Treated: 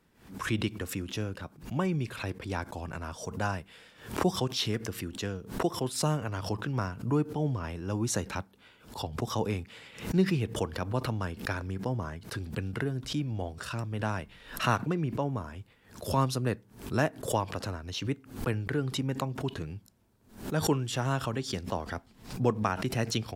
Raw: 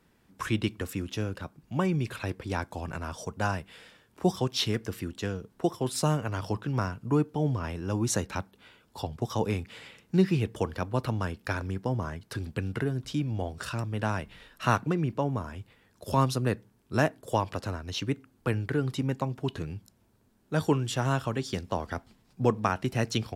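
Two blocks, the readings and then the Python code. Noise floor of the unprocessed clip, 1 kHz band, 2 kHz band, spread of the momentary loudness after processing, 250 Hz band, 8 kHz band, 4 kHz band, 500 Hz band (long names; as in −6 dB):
−66 dBFS, −2.0 dB, −1.0 dB, 11 LU, −2.0 dB, 0.0 dB, 0.0 dB, −2.0 dB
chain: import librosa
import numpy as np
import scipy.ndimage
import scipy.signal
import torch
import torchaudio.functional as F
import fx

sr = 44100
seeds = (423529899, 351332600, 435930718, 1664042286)

y = fx.pre_swell(x, sr, db_per_s=120.0)
y = y * 10.0 ** (-2.5 / 20.0)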